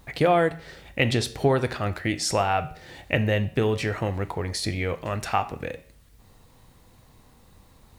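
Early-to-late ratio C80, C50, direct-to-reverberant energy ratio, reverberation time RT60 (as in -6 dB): 19.0 dB, 15.5 dB, 10.0 dB, 0.50 s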